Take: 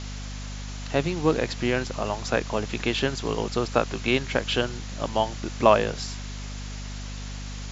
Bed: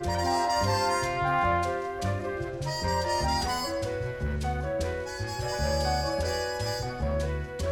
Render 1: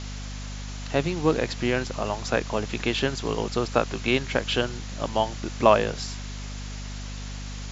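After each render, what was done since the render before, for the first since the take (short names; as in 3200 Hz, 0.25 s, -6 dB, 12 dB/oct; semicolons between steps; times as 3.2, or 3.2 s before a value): nothing audible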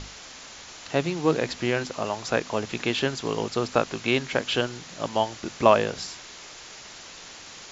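notches 50/100/150/200/250 Hz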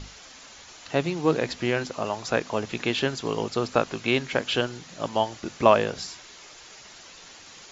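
denoiser 6 dB, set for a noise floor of -44 dBFS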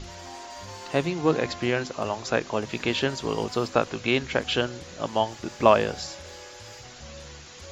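add bed -15.5 dB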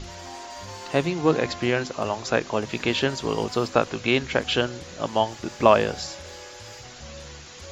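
gain +2 dB; limiter -2 dBFS, peak gain reduction 1.5 dB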